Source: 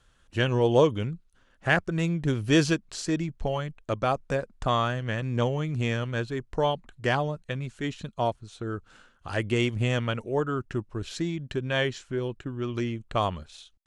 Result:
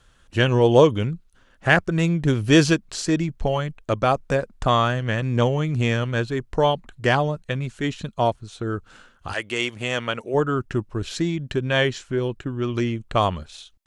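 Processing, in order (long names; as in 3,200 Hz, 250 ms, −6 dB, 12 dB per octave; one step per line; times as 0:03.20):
0:09.32–0:10.33: high-pass filter 1,300 Hz → 330 Hz 6 dB per octave
level +6 dB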